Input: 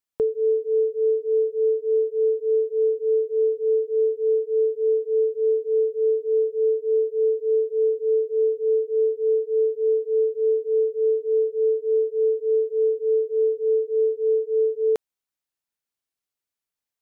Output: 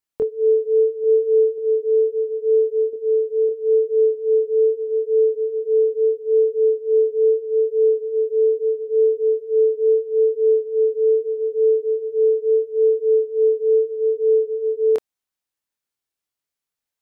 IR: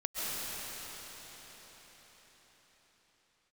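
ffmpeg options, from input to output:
-filter_complex "[0:a]asettb=1/sr,asplit=3[a][b][c];[a]atrim=end=2.934[d];[b]atrim=start=2.93:end=3.49,asetpts=PTS-STARTPTS,afade=t=in:d=0.004:c=qsin,afade=t=out:st=0.556:d=0.004:c=qsin,equalizer=f=330:w=2.7:g=-7[e];[c]atrim=start=3.486[f];[d][e]acrossfade=d=0.004:c1=hsin:c2=qsin[g];[g][f]acrossfade=d=0.004:c1=qsin:c2=hsin,flanger=delay=22.5:depth=2.8:speed=0.77,asettb=1/sr,asplit=3[h][i][j];[h]atrim=end=1.004[k];[i]atrim=start=1:end=1.58,asetpts=PTS-STARTPTS,afade=t=in:d=0.004:c=qsin,afade=t=out:st=0.576:d=0.004:c=qsin,asplit=2[l][m];[m]adelay=38,volume=-4dB[n];[l][n]amix=inputs=2:normalize=0,atrim=end_sample=25578[o];[j]atrim=start=1.576[p];[k][o]acrossfade=d=0.004:c1=hsin:c2=qsin[q];[q][p]acrossfade=d=0.004:c1=qsin:c2=hsin,volume=5dB"

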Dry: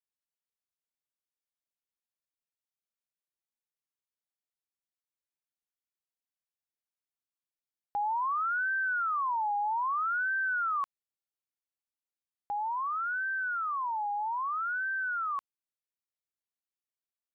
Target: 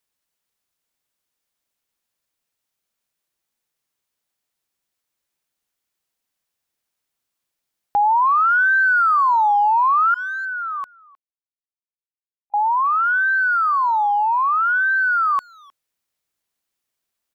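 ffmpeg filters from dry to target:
-filter_complex "[0:a]asettb=1/sr,asplit=3[a][b][c];[a]atrim=end=10.144[d];[b]atrim=start=10.14:end=12.54,asetpts=PTS-STARTPTS,afade=t=in:d=0.004:c=qsin,afade=t=out:st=2.396:d=0.004:c=qsin,agate=range=-51dB:threshold=-29dB:ratio=16:detection=peak[e];[c]atrim=start=12.536[f];[d][e]acrossfade=d=0.004:c1=hsin:c2=qsin[g];[g][f]acrossfade=d=0.004:c1=qsin:c2=hsin,acontrast=76,asplit=2[h][i];[i]adelay=310,highpass=300,lowpass=3.4k,asoftclip=type=hard:threshold=-29.5dB,volume=-23dB[j];[h][j]amix=inputs=2:normalize=0,volume=7.5dB"

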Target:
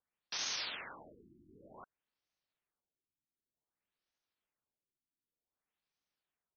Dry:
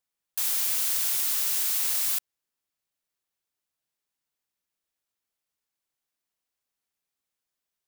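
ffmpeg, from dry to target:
-af "atempo=1.2,afftfilt=real='re*lt(b*sr/1024,350*pow(6700/350,0.5+0.5*sin(2*PI*0.54*pts/sr)))':imag='im*lt(b*sr/1024,350*pow(6700/350,0.5+0.5*sin(2*PI*0.54*pts/sr)))':win_size=1024:overlap=0.75,volume=-1dB"

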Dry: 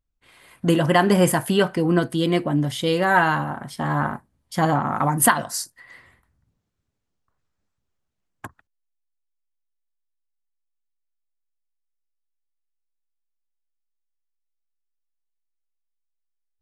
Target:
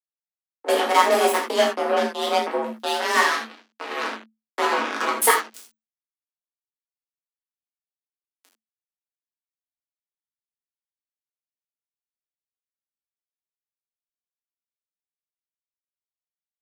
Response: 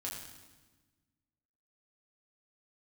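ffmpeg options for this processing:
-filter_complex "[0:a]acrusher=bits=2:mix=0:aa=0.5,afreqshift=220[a];[1:a]atrim=start_sample=2205,atrim=end_sample=4410[b];[a][b]afir=irnorm=-1:irlink=0"

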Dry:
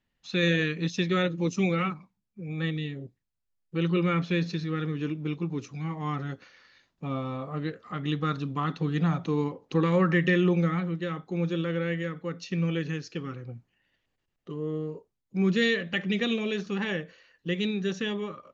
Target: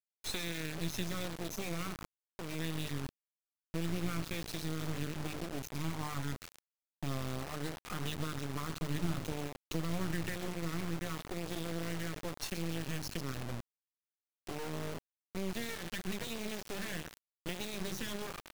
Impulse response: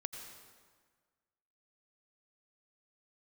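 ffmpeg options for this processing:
-filter_complex "[0:a]bandreject=f=50:t=h:w=6,bandreject=f=100:t=h:w=6,bandreject=f=150:t=h:w=6,bandreject=f=200:t=h:w=6,bandreject=f=250:t=h:w=6,bandreject=f=300:t=h:w=6,bandreject=f=350:t=h:w=6,flanger=delay=1:depth=2.2:regen=-42:speed=1:shape=triangular,acrossover=split=110[a][b];[b]acompressor=threshold=-43dB:ratio=20[c];[a][c]amix=inputs=2:normalize=0,bass=f=250:g=2,treble=f=4k:g=10,asplit=5[d][e][f][g][h];[e]adelay=131,afreqshift=-56,volume=-14dB[i];[f]adelay=262,afreqshift=-112,volume=-21.7dB[j];[g]adelay=393,afreqshift=-168,volume=-29.5dB[k];[h]adelay=524,afreqshift=-224,volume=-37.2dB[l];[d][i][j][k][l]amix=inputs=5:normalize=0,acrusher=bits=5:dc=4:mix=0:aa=0.000001,volume=7.5dB"

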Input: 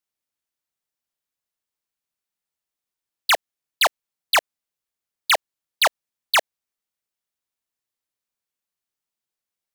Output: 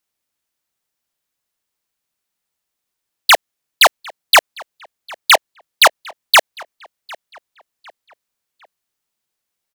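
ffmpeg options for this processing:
-filter_complex "[0:a]asplit=2[a][b];[b]adelay=753,lowpass=f=3.5k:p=1,volume=-23dB,asplit=2[c][d];[d]adelay=753,lowpass=f=3.5k:p=1,volume=0.42,asplit=2[e][f];[f]adelay=753,lowpass=f=3.5k:p=1,volume=0.42[g];[a][c][e][g]amix=inputs=4:normalize=0,volume=8.5dB"

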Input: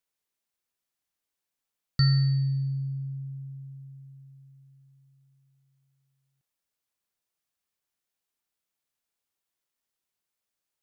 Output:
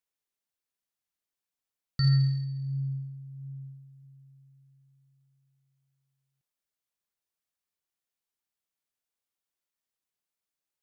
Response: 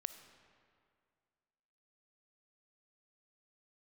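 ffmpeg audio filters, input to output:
-filter_complex "[0:a]asplit=3[a][b][c];[a]afade=t=out:st=2.03:d=0.02[d];[b]aphaser=in_gain=1:out_gain=1:delay=2.4:decay=0.46:speed=1.4:type=sinusoidal,afade=t=in:st=2.03:d=0.02,afade=t=out:st=4.03:d=0.02[e];[c]afade=t=in:st=4.03:d=0.02[f];[d][e][f]amix=inputs=3:normalize=0,volume=-5dB"

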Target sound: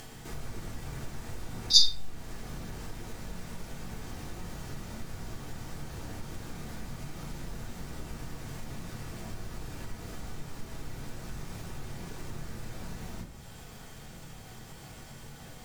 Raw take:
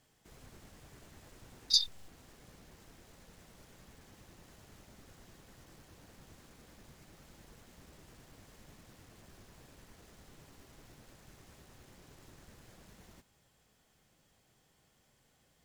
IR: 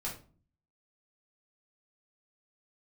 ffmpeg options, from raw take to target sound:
-filter_complex "[1:a]atrim=start_sample=2205[a];[0:a][a]afir=irnorm=-1:irlink=0,asplit=2[b][c];[c]acompressor=mode=upward:threshold=-33dB:ratio=2.5,volume=2dB[d];[b][d]amix=inputs=2:normalize=0"

